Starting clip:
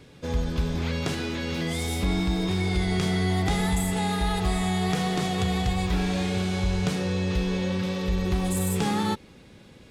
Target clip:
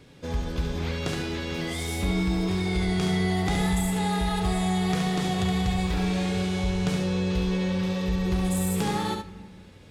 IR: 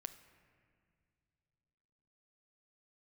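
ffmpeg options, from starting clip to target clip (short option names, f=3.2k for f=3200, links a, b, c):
-filter_complex "[0:a]asplit=2[a][b];[1:a]atrim=start_sample=2205,adelay=70[c];[b][c]afir=irnorm=-1:irlink=0,volume=-1dB[d];[a][d]amix=inputs=2:normalize=0,volume=-2dB"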